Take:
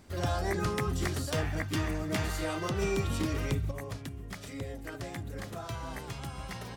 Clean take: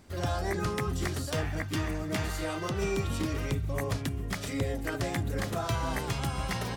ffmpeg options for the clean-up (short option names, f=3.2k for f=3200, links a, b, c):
-af "asetnsamples=n=441:p=0,asendcmd='3.71 volume volume 8dB',volume=0dB"